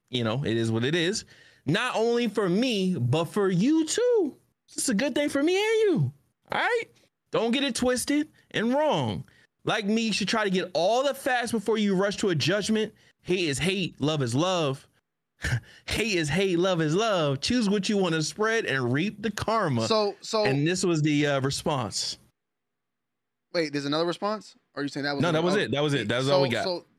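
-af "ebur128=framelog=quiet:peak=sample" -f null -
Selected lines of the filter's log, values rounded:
Integrated loudness:
  I:         -25.9 LUFS
  Threshold: -36.1 LUFS
Loudness range:
  LRA:         3.3 LU
  Threshold: -46.3 LUFS
  LRA low:   -28.4 LUFS
  LRA high:  -25.1 LUFS
Sample peak:
  Peak:       -8.2 dBFS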